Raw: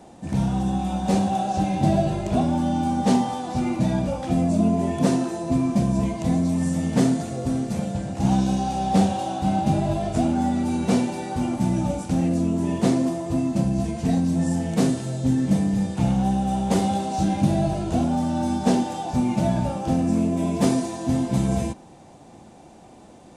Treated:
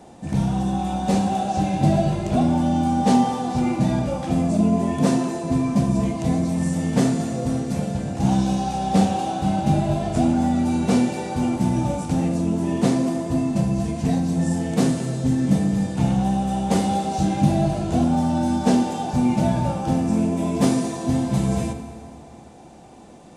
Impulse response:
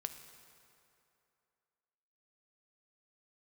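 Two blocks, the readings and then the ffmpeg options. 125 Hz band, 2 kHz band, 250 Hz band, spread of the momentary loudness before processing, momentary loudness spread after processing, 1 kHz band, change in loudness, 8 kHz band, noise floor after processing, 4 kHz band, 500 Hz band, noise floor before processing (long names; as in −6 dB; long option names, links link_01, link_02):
+2.0 dB, +2.0 dB, +1.5 dB, 4 LU, 4 LU, +1.5 dB, +1.5 dB, +1.5 dB, −43 dBFS, +1.5 dB, +1.0 dB, −47 dBFS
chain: -filter_complex "[1:a]atrim=start_sample=2205[link_01];[0:a][link_01]afir=irnorm=-1:irlink=0,volume=3.5dB"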